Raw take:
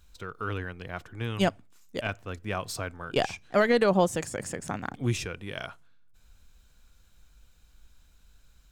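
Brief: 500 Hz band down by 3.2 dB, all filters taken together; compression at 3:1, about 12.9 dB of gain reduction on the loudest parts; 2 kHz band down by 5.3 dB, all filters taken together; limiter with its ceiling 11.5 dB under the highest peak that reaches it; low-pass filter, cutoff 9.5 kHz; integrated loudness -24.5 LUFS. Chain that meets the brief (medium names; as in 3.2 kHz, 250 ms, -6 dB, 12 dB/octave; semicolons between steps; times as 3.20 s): low-pass 9.5 kHz; peaking EQ 500 Hz -3.5 dB; peaking EQ 2 kHz -7 dB; compression 3:1, threshold -38 dBFS; trim +22.5 dB; peak limiter -13 dBFS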